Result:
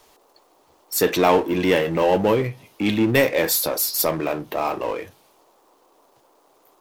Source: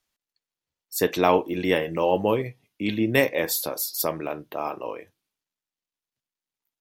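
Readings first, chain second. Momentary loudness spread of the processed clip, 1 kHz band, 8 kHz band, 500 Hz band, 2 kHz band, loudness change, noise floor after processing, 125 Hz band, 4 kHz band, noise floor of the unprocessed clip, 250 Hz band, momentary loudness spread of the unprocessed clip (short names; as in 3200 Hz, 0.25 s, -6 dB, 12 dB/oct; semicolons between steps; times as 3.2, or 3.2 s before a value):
9 LU, +3.5 dB, +6.0 dB, +4.0 dB, +3.5 dB, +4.0 dB, -59 dBFS, +5.0 dB, +5.5 dB, under -85 dBFS, +4.5 dB, 12 LU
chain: power-law curve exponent 0.7; band noise 290–1100 Hz -59 dBFS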